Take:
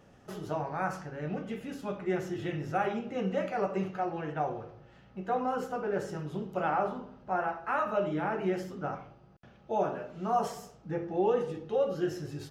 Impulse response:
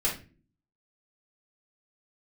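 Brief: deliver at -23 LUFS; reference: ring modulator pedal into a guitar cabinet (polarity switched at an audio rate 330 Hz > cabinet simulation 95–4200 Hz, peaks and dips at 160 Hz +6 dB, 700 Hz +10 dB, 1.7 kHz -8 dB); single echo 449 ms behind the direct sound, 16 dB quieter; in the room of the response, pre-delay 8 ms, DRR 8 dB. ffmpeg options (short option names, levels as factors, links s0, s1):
-filter_complex "[0:a]aecho=1:1:449:0.158,asplit=2[s0][s1];[1:a]atrim=start_sample=2205,adelay=8[s2];[s1][s2]afir=irnorm=-1:irlink=0,volume=0.158[s3];[s0][s3]amix=inputs=2:normalize=0,aeval=exprs='val(0)*sgn(sin(2*PI*330*n/s))':c=same,highpass=95,equalizer=f=160:t=q:w=4:g=6,equalizer=f=700:t=q:w=4:g=10,equalizer=f=1700:t=q:w=4:g=-8,lowpass=f=4200:w=0.5412,lowpass=f=4200:w=1.3066,volume=2.11"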